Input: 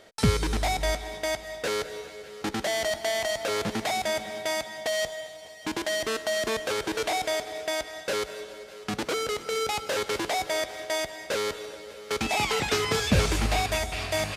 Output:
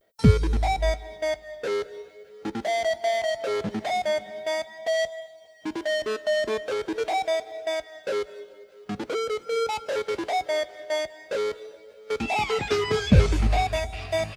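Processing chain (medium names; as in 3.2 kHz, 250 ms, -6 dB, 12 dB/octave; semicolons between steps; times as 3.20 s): vibrato 0.44 Hz 49 cents; added noise violet -59 dBFS; spectral contrast expander 1.5:1; trim +4.5 dB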